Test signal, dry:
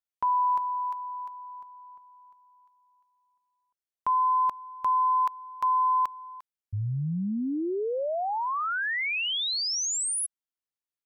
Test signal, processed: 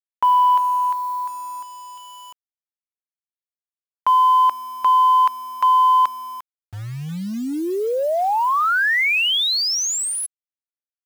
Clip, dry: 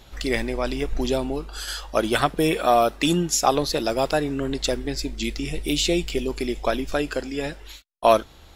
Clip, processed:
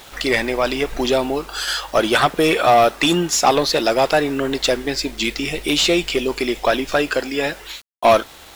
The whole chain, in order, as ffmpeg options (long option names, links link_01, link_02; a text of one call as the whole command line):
ffmpeg -i in.wav -filter_complex "[0:a]asplit=2[link_01][link_02];[link_02]highpass=frequency=720:poles=1,volume=18dB,asoftclip=type=tanh:threshold=-4dB[link_03];[link_01][link_03]amix=inputs=2:normalize=0,lowpass=frequency=3800:poles=1,volume=-6dB,acrusher=bits=6:mix=0:aa=0.000001" out.wav